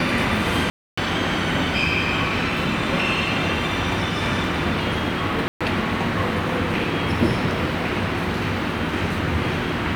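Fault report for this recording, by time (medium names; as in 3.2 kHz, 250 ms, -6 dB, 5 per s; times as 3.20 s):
0.70–0.97 s: dropout 275 ms
5.48–5.61 s: dropout 126 ms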